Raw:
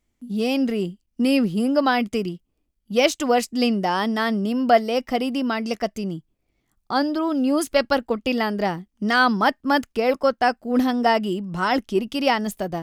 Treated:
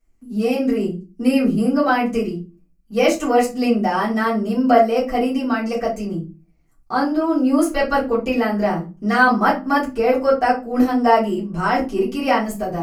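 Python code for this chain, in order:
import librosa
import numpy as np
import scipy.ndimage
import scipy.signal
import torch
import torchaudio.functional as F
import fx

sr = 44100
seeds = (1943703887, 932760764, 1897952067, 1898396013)

y = fx.peak_eq(x, sr, hz=3500.0, db=-14.5, octaves=0.32)
y = fx.room_shoebox(y, sr, seeds[0], volume_m3=120.0, walls='furnished', distance_m=3.6)
y = fx.dynamic_eq(y, sr, hz=4900.0, q=3.3, threshold_db=-38.0, ratio=4.0, max_db=-5)
y = F.gain(torch.from_numpy(y), -6.0).numpy()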